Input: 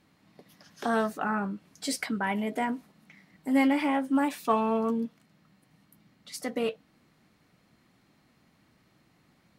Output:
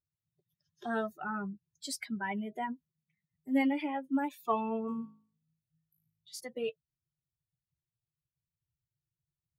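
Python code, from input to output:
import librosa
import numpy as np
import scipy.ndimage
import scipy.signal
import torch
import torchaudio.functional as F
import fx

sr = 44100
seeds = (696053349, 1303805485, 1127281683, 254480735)

y = fx.bin_expand(x, sr, power=2.0)
y = fx.room_flutter(y, sr, wall_m=3.2, rt60_s=0.47, at=(4.87, 6.39), fade=0.02)
y = y * 10.0 ** (-3.0 / 20.0)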